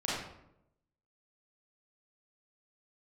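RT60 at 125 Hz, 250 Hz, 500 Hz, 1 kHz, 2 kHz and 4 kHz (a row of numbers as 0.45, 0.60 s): 1.0, 1.0, 0.90, 0.75, 0.60, 0.50 s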